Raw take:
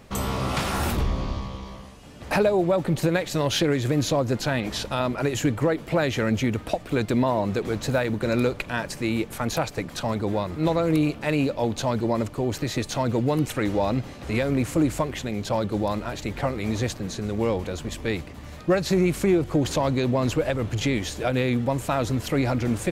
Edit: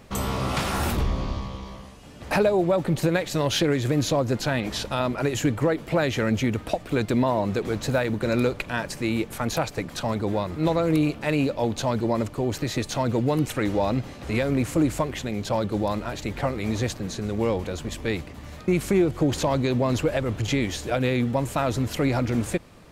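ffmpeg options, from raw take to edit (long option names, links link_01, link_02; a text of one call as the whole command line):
ffmpeg -i in.wav -filter_complex "[0:a]asplit=2[link_01][link_02];[link_01]atrim=end=18.682[link_03];[link_02]atrim=start=19.008[link_04];[link_03][link_04]acrossfade=duration=0.004:curve1=hsin:curve2=hsin" out.wav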